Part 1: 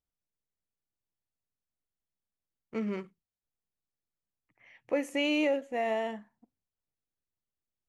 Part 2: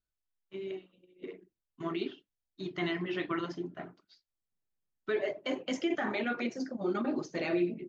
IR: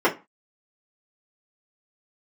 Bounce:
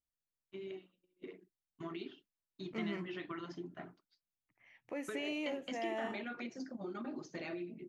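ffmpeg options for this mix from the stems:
-filter_complex "[0:a]alimiter=limit=-24dB:level=0:latency=1:release=75,volume=-6dB[link_01];[1:a]agate=range=-33dB:threshold=-53dB:ratio=3:detection=peak,acompressor=threshold=-35dB:ratio=6,volume=-4dB[link_02];[link_01][link_02]amix=inputs=2:normalize=0,equalizer=frequency=500:width_type=o:width=0.61:gain=-4"

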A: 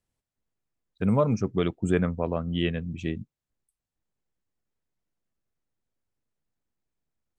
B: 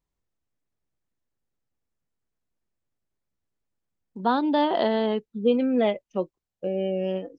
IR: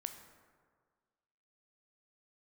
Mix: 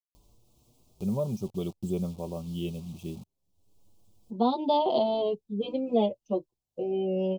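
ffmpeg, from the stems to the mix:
-filter_complex "[0:a]aecho=1:1:5.3:0.56,acrusher=bits=6:mix=0:aa=0.000001,volume=-9dB[link_01];[1:a]asplit=2[link_02][link_03];[link_03]adelay=6.6,afreqshift=0.51[link_04];[link_02][link_04]amix=inputs=2:normalize=1,adelay=150,volume=2dB[link_05];[link_01][link_05]amix=inputs=2:normalize=0,equalizer=frequency=94:width=1.7:gain=5,acompressor=mode=upward:threshold=-42dB:ratio=2.5,asuperstop=centerf=1700:order=4:qfactor=0.8"

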